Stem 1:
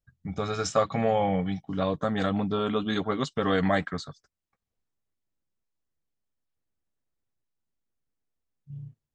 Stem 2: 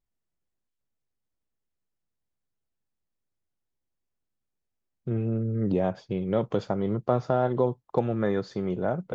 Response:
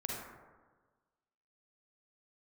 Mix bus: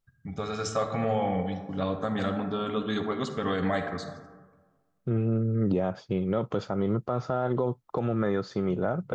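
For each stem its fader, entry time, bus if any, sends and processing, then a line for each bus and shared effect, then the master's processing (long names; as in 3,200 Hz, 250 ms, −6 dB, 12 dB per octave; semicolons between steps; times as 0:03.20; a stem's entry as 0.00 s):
−6.5 dB, 0.00 s, send −3.5 dB, no processing
+1.5 dB, 0.00 s, no send, parametric band 1,300 Hz +8 dB 0.22 octaves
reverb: on, RT60 1.4 s, pre-delay 38 ms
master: brickwall limiter −17 dBFS, peak gain reduction 9 dB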